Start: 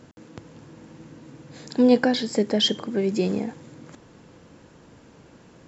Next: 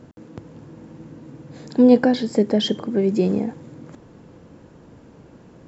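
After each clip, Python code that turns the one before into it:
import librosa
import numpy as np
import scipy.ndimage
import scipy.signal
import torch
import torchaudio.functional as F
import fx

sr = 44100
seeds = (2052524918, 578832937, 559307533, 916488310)

y = fx.tilt_shelf(x, sr, db=5.0, hz=1200.0)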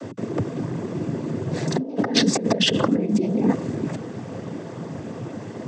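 y = fx.over_compress(x, sr, threshold_db=-28.0, ratio=-1.0)
y = fx.noise_vocoder(y, sr, seeds[0], bands=16)
y = F.gain(torch.from_numpy(y), 6.5).numpy()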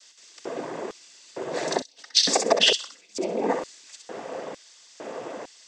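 y = fx.echo_thinned(x, sr, ms=64, feedback_pct=21, hz=1200.0, wet_db=-5.0)
y = fx.filter_lfo_highpass(y, sr, shape='square', hz=1.1, low_hz=560.0, high_hz=4500.0, q=1.3)
y = F.gain(torch.from_numpy(y), 1.5).numpy()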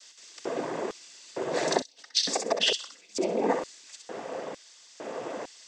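y = fx.rider(x, sr, range_db=4, speed_s=0.5)
y = F.gain(torch.from_numpy(y), -3.0).numpy()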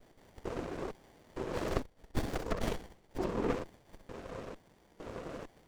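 y = fx.running_max(x, sr, window=33)
y = F.gain(torch.from_numpy(y), -5.0).numpy()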